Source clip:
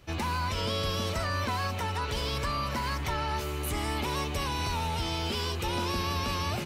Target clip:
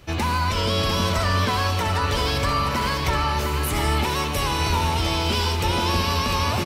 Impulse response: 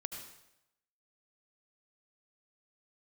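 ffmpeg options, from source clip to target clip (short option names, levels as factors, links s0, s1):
-filter_complex "[0:a]aecho=1:1:700:0.447,asplit=2[s0][s1];[1:a]atrim=start_sample=2205[s2];[s1][s2]afir=irnorm=-1:irlink=0,volume=1.19[s3];[s0][s3]amix=inputs=2:normalize=0,volume=1.26"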